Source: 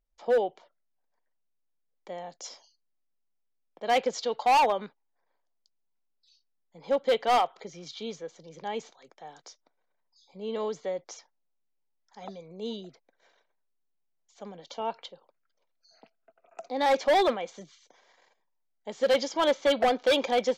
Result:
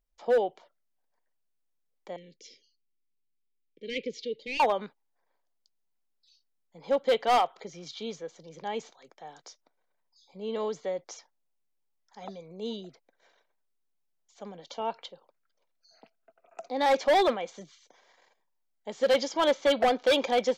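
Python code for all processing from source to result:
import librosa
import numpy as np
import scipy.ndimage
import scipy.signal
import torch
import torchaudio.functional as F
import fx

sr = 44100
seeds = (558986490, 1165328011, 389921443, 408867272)

y = fx.chain(x, sr, fx.ellip_bandstop(low_hz=440.0, high_hz=2200.0, order=3, stop_db=40),
    fx.air_absorb(metres=160.0), at=(2.16, 4.6))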